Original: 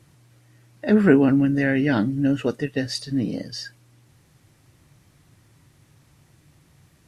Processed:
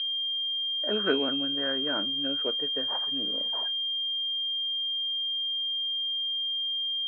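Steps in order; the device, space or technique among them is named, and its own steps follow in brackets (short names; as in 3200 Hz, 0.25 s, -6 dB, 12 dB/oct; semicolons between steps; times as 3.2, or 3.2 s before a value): toy sound module (decimation joined by straight lines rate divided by 8×; pulse-width modulation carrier 3200 Hz; speaker cabinet 600–3600 Hz, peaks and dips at 800 Hz -8 dB, 1500 Hz +4 dB, 2100 Hz -6 dB); gain -1.5 dB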